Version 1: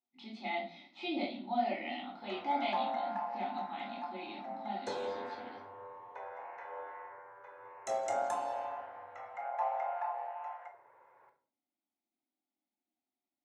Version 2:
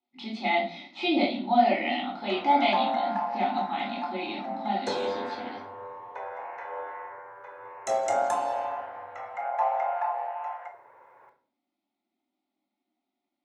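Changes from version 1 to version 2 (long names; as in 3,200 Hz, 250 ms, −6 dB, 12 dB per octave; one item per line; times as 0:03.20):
speech +11.5 dB
background +8.0 dB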